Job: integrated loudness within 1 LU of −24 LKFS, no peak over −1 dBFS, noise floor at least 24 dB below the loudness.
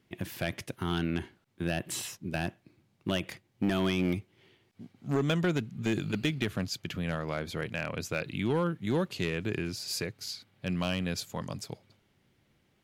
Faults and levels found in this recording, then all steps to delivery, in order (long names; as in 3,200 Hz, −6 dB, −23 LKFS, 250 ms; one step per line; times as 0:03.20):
share of clipped samples 0.5%; peaks flattened at −21.0 dBFS; integrated loudness −33.0 LKFS; sample peak −21.0 dBFS; target loudness −24.0 LKFS
→ clipped peaks rebuilt −21 dBFS
level +9 dB